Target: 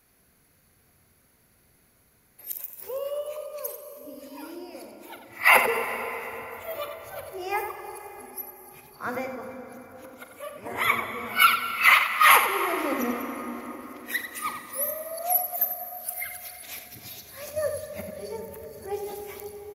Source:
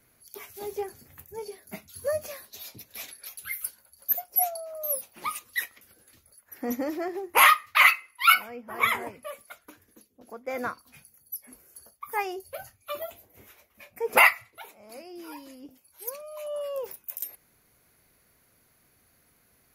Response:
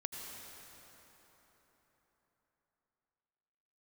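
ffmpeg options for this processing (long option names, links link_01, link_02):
-filter_complex "[0:a]areverse,asplit=2[link_01][link_02];[link_02]adelay=43,volume=-12dB[link_03];[link_01][link_03]amix=inputs=2:normalize=0,asplit=2[link_04][link_05];[1:a]atrim=start_sample=2205,lowshelf=frequency=430:gain=10,adelay=91[link_06];[link_05][link_06]afir=irnorm=-1:irlink=0,volume=-6.5dB[link_07];[link_04][link_07]amix=inputs=2:normalize=0"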